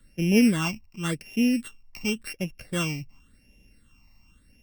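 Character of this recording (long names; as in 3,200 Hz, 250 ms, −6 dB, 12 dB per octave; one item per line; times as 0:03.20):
a buzz of ramps at a fixed pitch in blocks of 16 samples
phaser sweep stages 8, 0.91 Hz, lowest notch 440–1,300 Hz
Opus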